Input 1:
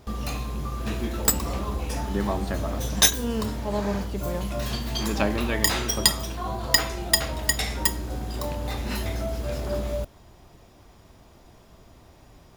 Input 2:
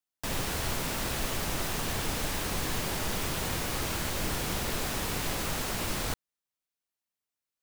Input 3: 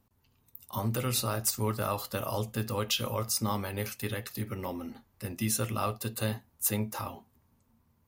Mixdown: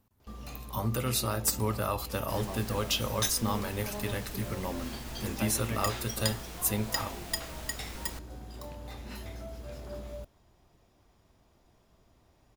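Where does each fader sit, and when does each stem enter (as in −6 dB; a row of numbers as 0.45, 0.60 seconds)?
−13.0, −13.0, 0.0 decibels; 0.20, 2.05, 0.00 seconds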